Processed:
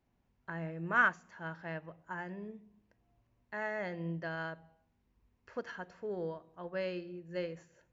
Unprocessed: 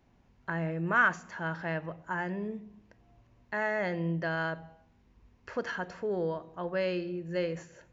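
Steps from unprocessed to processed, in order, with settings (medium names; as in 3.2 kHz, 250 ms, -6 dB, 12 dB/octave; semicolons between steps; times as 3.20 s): upward expansion 1.5:1, over -40 dBFS; trim -2 dB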